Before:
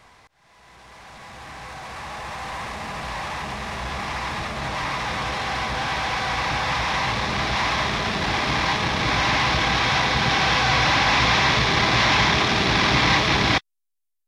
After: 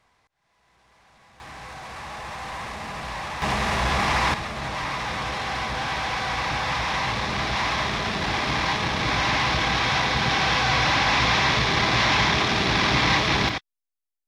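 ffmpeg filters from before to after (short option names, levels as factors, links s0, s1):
-af "asetnsamples=n=441:p=0,asendcmd='1.4 volume volume -2dB;3.42 volume volume 6.5dB;4.34 volume volume -2dB;13.49 volume volume -9dB',volume=0.211"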